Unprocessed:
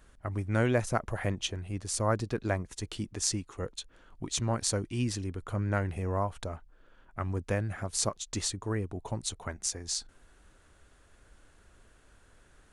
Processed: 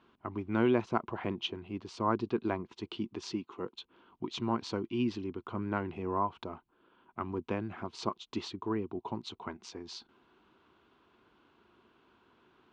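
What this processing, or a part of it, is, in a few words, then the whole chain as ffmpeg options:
kitchen radio: -filter_complex "[0:a]asettb=1/sr,asplit=3[a][b][c];[a]atrim=end=3.334[d];[b]atrim=start=3.33:end=3.74,asetpts=PTS-STARTPTS,afade=t=in:d=0.004:c=qsin,afade=t=out:st=0.406:d=0.004:c=qsin,highpass=120[e];[c]atrim=start=3.736[f];[d][e]acrossfade=d=0.004:c1=hsin:c2=qsin[g];[g][f]acrossfade=d=0.004:c1=qsin:c2=hsin,highpass=170,equalizer=f=230:t=q:w=4:g=5,equalizer=f=360:t=q:w=4:g=8,equalizer=f=560:t=q:w=4:g=-8,equalizer=f=1k:t=q:w=4:g=8,equalizer=f=1.8k:t=q:w=4:g=-9,equalizer=f=2.9k:t=q:w=4:g=3,lowpass=f=3.9k:w=0.5412,lowpass=f=3.9k:w=1.3066,volume=-2dB"

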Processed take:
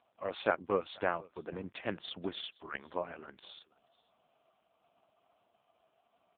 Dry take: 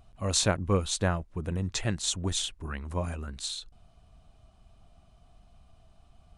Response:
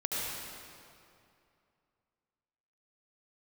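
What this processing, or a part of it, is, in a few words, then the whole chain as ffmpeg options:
satellite phone: -filter_complex "[0:a]asettb=1/sr,asplit=3[a][b][c];[a]atrim=end=1.524[d];[b]atrim=start=1.52:end=2.56,asetpts=PTS-STARTPTS,afade=t=in:d=0.004:c=qsin,afade=t=out:st=1.036:d=0.004:c=qsin,lowshelf=f=260:g=6[e];[c]atrim=start=2.556[f];[d][e]acrossfade=d=0.004:c1=hsin:c2=qsin[g];[g][f]acrossfade=d=0.004:c1=qsin:c2=hsin,highpass=390,lowpass=3.1k,aecho=1:1:481:0.0668" -ar 8000 -c:a libopencore_amrnb -b:a 4750

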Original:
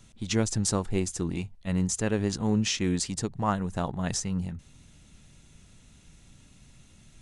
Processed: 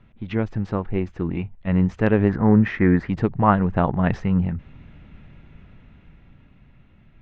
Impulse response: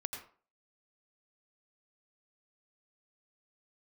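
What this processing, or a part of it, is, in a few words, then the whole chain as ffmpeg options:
action camera in a waterproof case: -filter_complex "[0:a]asettb=1/sr,asplit=3[a][b][c];[a]atrim=end=2.294[d];[b]atrim=start=2.29:end=3.09,asetpts=PTS-STARTPTS,afade=t=in:d=0.004:c=qsin,afade=t=out:st=0.796:d=0.004:c=qsin,highshelf=f=2.3k:t=q:w=3:g=-7[e];[c]atrim=start=3.086[f];[d][e]acrossfade=d=0.004:c1=hsin:c2=qsin[g];[g][f]acrossfade=d=0.004:c1=qsin:c2=hsin,lowpass=f=2.4k:w=0.5412,lowpass=f=2.4k:w=1.3066,dynaudnorm=f=250:g=13:m=8dB,volume=2.5dB" -ar 48000 -c:a aac -b:a 128k

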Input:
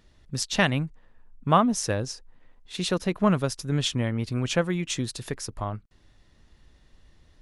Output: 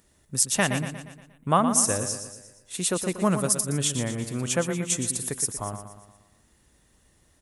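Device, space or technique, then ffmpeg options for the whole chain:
budget condenser microphone: -filter_complex "[0:a]highpass=f=110:p=1,highshelf=f=6.3k:t=q:w=1.5:g=13,aecho=1:1:118|236|354|472|590|708:0.355|0.181|0.0923|0.0471|0.024|0.0122,asettb=1/sr,asplit=3[a][b][c];[a]atrim=end=3.134[d];[b]atrim=start=3.13:end=3.61,asetpts=PTS-STARTPTS,afade=t=in:d=0.004:c=qsin,afade=t=out:st=0.476:d=0.004:c=qsin,adynamicequalizer=threshold=0.01:dfrequency=4400:dqfactor=0.7:tfrequency=4400:tqfactor=0.7:attack=5:release=100:ratio=0.375:range=2:mode=boostabove:tftype=highshelf[e];[c]atrim=start=3.606[f];[d][e]acrossfade=d=0.004:c1=hsin:c2=qsin[g];[g][f]acrossfade=d=0.004:c1=qsin:c2=hsin,volume=-1dB"

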